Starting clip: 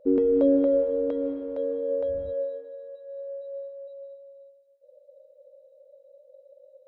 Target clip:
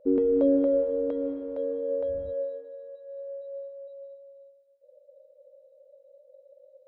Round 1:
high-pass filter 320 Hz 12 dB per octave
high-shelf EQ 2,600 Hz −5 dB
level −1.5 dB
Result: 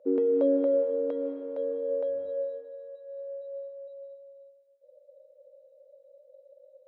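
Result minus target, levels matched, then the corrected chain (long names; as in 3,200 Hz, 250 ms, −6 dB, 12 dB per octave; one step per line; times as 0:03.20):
250 Hz band −3.0 dB
high-shelf EQ 2,600 Hz −5 dB
level −1.5 dB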